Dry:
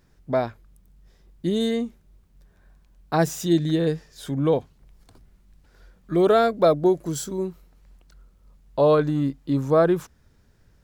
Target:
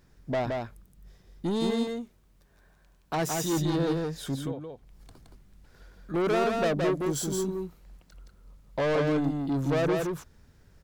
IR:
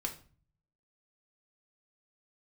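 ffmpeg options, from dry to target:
-filter_complex "[0:a]asettb=1/sr,asplit=3[a][b][c];[a]atrim=end=1.704[d];[b]atrim=start=1.7:end=3.53,asetpts=PTS-STARTPTS,afade=t=in:d=0.004:c=qsin,afade=t=out:st=1.826:d=0.004:c=qsin,lowshelf=f=210:g=-9[e];[c]atrim=start=3.526[f];[d][e]acrossfade=d=0.004:c1=hsin:c2=qsin[g];[g][f]acrossfade=d=0.004:c1=qsin:c2=hsin,asettb=1/sr,asplit=3[h][i][j];[h]atrim=end=4.354[k];[i]atrim=start=4.35:end=6.14,asetpts=PTS-STARTPTS,afade=t=in:d=0.004:c=qsin,afade=t=out:st=1.786:d=0.004:c=qsin,acompressor=threshold=-38dB:ratio=4[l];[j]atrim=start=6.136[m];[k][l]acrossfade=d=0.004:c1=hsin:c2=qsin[n];[n][m]acrossfade=d=0.004:c1=qsin:c2=hsin,asoftclip=type=tanh:threshold=-24dB,aecho=1:1:170:0.668"

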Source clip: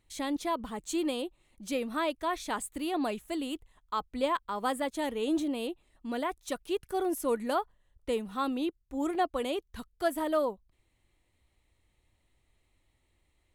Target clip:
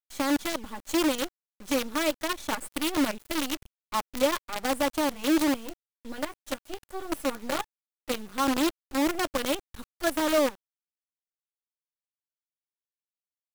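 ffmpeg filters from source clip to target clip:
-filter_complex "[0:a]asettb=1/sr,asplit=3[a][b][c];[a]atrim=end=5.564[d];[b]atrim=start=5.56:end=8.14,asetpts=PTS-STARTPTS,afade=t=in:d=0.004:c=qsin,afade=t=out:st=2.576:d=0.004:c=qsin,flanger=delay=9.6:depth=3.4:regen=-24:speed=1.3:shape=sinusoidal[e];[c]atrim=start=8.136[f];[d][e]acrossfade=d=0.004:c1=hsin:c2=qsin[g];[g][f]acrossfade=d=0.004:c1=qsin:c2=hsin,aecho=1:1:3.5:0.98,acrusher=bits=5:dc=4:mix=0:aa=0.000001"

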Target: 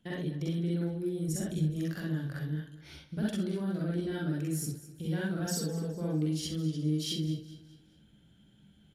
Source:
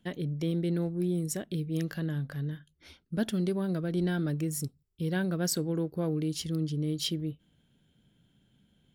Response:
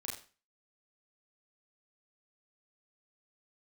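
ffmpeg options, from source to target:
-filter_complex "[0:a]asettb=1/sr,asplit=3[a][b][c];[a]atrim=end=1.284[d];[b]atrim=start=1.28:end=1.7,asetpts=PTS-STARTPTS,afade=t=in:d=0.004:c=qsin,afade=t=out:st=0.416:d=0.004:c=qsin,lowshelf=f=180:g=12[e];[c]atrim=start=1.696[f];[d][e]acrossfade=d=0.004:c1=hsin:c2=qsin[g];[g][f]acrossfade=d=0.004:c1=qsin:c2=hsin,asettb=1/sr,asplit=3[h][i][j];[h]atrim=end=5.394[k];[i]atrim=start=5.39:end=5.96,asetpts=PTS-STARTPTS,afade=t=in:d=0.004:c=qsin,afade=t=out:st=0.566:d=0.004:c=qsin,aecho=1:1:4.5:0.83,atrim=end_sample=25137[l];[j]atrim=start=5.956[m];[k][l]acrossfade=d=0.004:c1=hsin:c2=qsin[n];[n][m]acrossfade=d=0.004:c1=qsin:c2=hsin,acompressor=threshold=-37dB:ratio=2.5,aecho=1:1:208|416|624|832:0.158|0.065|0.0266|0.0109[o];[1:a]atrim=start_sample=2205,atrim=end_sample=4410,asetrate=33075,aresample=44100[p];[o][p]afir=irnorm=-1:irlink=0,aresample=32000,aresample=44100,volume=2dB"

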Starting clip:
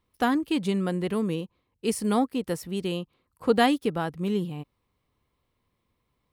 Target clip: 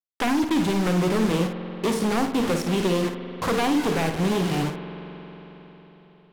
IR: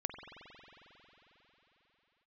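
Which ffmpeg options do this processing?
-filter_complex "[0:a]highshelf=f=7.9k:g=-10.5,bandreject=f=50:t=h:w=6,bandreject=f=100:t=h:w=6,bandreject=f=150:t=h:w=6,bandreject=f=200:t=h:w=6,bandreject=f=250:t=h:w=6,bandreject=f=300:t=h:w=6,bandreject=f=350:t=h:w=6,bandreject=f=400:t=h:w=6,bandreject=f=450:t=h:w=6,acrossover=split=170|1200[a][b][c];[a]acompressor=threshold=-48dB:ratio=4[d];[b]acompressor=threshold=-34dB:ratio=4[e];[c]acompressor=threshold=-48dB:ratio=4[f];[d][e][f]amix=inputs=3:normalize=0,asplit=2[g][h];[h]asoftclip=type=tanh:threshold=-32dB,volume=-6dB[i];[g][i]amix=inputs=2:normalize=0,acrusher=bits=6:mix=0:aa=0.000001,aeval=exprs='0.299*sin(PI/2*7.94*val(0)/0.299)':c=same,adynamicsmooth=sensitivity=5.5:basefreq=2.8k,asplit=2[j][k];[1:a]atrim=start_sample=2205,adelay=55[l];[k][l]afir=irnorm=-1:irlink=0,volume=-6.5dB[m];[j][m]amix=inputs=2:normalize=0,volume=-8.5dB"

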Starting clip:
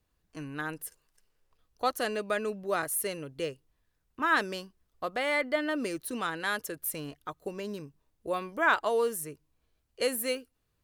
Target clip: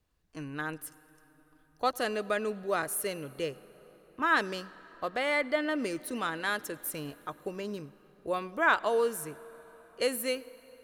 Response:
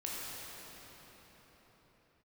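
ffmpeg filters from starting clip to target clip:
-filter_complex "[0:a]highshelf=f=9.9k:g=-4.5,asplit=2[a][b];[1:a]atrim=start_sample=2205,adelay=102[c];[b][c]afir=irnorm=-1:irlink=0,volume=-22.5dB[d];[a][d]amix=inputs=2:normalize=0"

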